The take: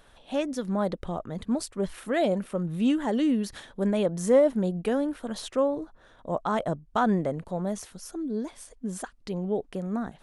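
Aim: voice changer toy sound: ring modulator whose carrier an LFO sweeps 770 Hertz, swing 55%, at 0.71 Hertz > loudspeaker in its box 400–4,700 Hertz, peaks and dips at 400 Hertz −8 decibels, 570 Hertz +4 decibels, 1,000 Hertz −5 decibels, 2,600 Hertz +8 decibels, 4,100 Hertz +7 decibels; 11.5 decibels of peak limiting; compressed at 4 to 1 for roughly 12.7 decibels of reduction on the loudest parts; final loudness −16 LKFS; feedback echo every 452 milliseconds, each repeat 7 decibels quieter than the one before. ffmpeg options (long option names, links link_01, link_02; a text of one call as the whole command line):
ffmpeg -i in.wav -af "acompressor=threshold=-31dB:ratio=4,alimiter=level_in=6dB:limit=-24dB:level=0:latency=1,volume=-6dB,aecho=1:1:452|904|1356|1808|2260:0.447|0.201|0.0905|0.0407|0.0183,aeval=exprs='val(0)*sin(2*PI*770*n/s+770*0.55/0.71*sin(2*PI*0.71*n/s))':channel_layout=same,highpass=400,equalizer=frequency=400:width_type=q:width=4:gain=-8,equalizer=frequency=570:width_type=q:width=4:gain=4,equalizer=frequency=1000:width_type=q:width=4:gain=-5,equalizer=frequency=2600:width_type=q:width=4:gain=8,equalizer=frequency=4100:width_type=q:width=4:gain=7,lowpass=frequency=4700:width=0.5412,lowpass=frequency=4700:width=1.3066,volume=26dB" out.wav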